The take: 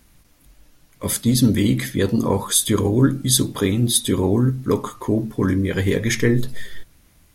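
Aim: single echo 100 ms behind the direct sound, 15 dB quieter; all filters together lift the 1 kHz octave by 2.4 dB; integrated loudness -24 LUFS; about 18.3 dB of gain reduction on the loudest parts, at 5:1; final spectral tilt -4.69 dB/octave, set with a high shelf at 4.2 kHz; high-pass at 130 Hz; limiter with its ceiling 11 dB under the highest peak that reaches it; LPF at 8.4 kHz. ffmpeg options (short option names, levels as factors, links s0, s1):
-af "highpass=130,lowpass=8400,equalizer=f=1000:t=o:g=3,highshelf=f=4200:g=-4,acompressor=threshold=0.0224:ratio=5,alimiter=level_in=2:limit=0.0631:level=0:latency=1,volume=0.501,aecho=1:1:100:0.178,volume=5.96"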